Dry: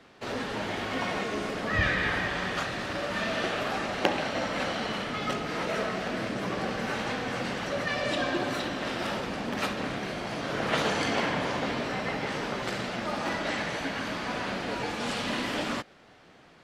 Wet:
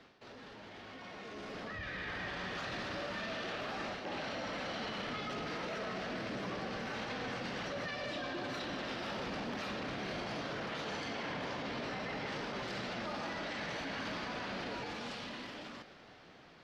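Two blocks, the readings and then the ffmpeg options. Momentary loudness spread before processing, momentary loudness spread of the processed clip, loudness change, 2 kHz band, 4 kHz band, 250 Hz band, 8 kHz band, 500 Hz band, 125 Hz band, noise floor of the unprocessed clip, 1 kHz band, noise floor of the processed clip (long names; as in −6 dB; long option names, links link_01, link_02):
5 LU, 8 LU, −9.5 dB, −10.0 dB, −8.5 dB, −10.0 dB, −12.0 dB, −10.0 dB, −10.0 dB, −55 dBFS, −10.0 dB, −57 dBFS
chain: -af "highshelf=frequency=6700:width_type=q:width=1.5:gain=-7.5,areverse,acompressor=threshold=-44dB:ratio=6,areverse,alimiter=level_in=17dB:limit=-24dB:level=0:latency=1:release=10,volume=-17dB,dynaudnorm=framelen=190:gausssize=17:maxgain=12dB,volume=-3dB"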